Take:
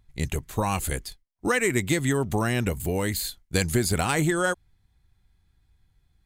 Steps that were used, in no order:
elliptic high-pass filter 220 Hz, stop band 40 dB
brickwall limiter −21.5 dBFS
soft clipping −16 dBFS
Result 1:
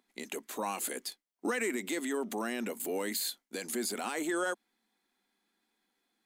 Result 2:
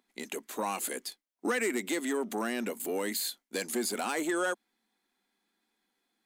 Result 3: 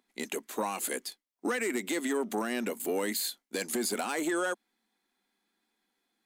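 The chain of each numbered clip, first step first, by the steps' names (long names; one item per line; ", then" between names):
brickwall limiter, then soft clipping, then elliptic high-pass filter
soft clipping, then brickwall limiter, then elliptic high-pass filter
soft clipping, then elliptic high-pass filter, then brickwall limiter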